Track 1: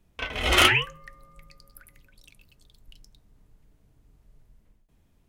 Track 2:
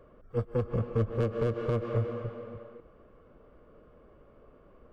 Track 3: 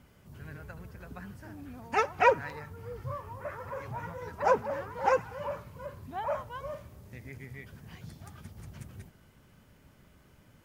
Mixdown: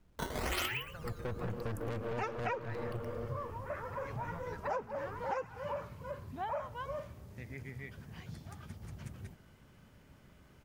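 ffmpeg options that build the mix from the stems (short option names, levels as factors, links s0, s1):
-filter_complex "[0:a]acrusher=samples=10:mix=1:aa=0.000001:lfo=1:lforange=16:lforate=1,volume=0.794,asplit=2[s0][s1];[s1]volume=0.106[s2];[1:a]aeval=exprs='(tanh(56.2*val(0)+0.6)-tanh(0.6))/56.2':c=same,dynaudnorm=f=110:g=9:m=3.35,adelay=700,volume=0.501[s3];[2:a]equalizer=f=13000:w=0.62:g=-5,adelay=250,volume=0.944[s4];[s2]aecho=0:1:114:1[s5];[s0][s3][s4][s5]amix=inputs=4:normalize=0,acompressor=threshold=0.02:ratio=6"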